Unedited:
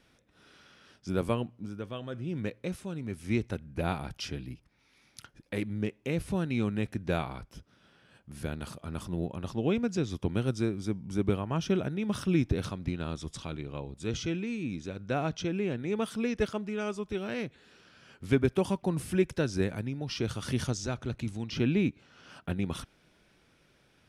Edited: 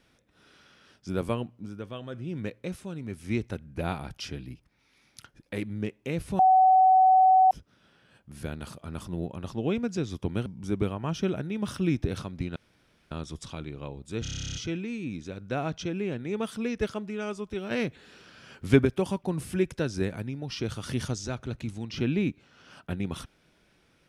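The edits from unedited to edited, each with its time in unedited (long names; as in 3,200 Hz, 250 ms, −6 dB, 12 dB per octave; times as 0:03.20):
0:06.39–0:07.51: beep over 753 Hz −15 dBFS
0:10.46–0:10.93: remove
0:13.03: splice in room tone 0.55 s
0:14.14: stutter 0.03 s, 12 plays
0:17.30–0:18.44: clip gain +6 dB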